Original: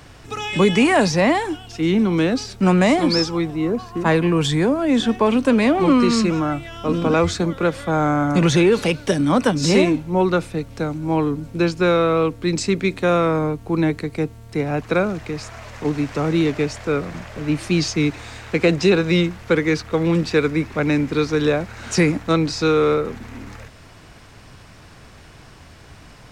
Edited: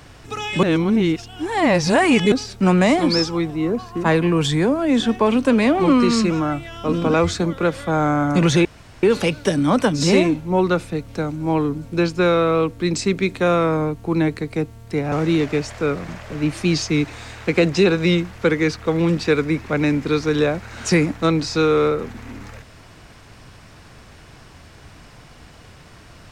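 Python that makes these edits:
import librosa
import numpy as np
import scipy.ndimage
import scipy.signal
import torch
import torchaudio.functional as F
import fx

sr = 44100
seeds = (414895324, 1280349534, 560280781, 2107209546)

y = fx.edit(x, sr, fx.reverse_span(start_s=0.63, length_s=1.69),
    fx.insert_room_tone(at_s=8.65, length_s=0.38),
    fx.cut(start_s=14.74, length_s=1.44), tone=tone)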